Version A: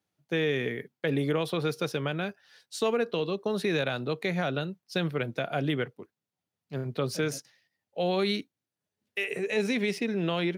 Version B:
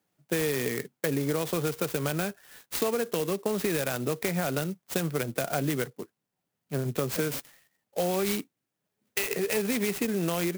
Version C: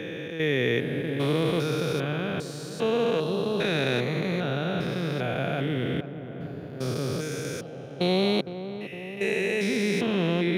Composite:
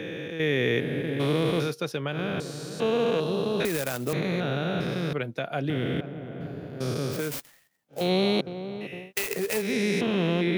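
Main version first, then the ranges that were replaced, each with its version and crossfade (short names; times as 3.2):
C
1.69–2.15 from A, crossfade 0.10 s
3.65–4.13 from B
5.13–5.7 from A
7.18–8 from B, crossfade 0.24 s
9.05–9.66 from B, crossfade 0.16 s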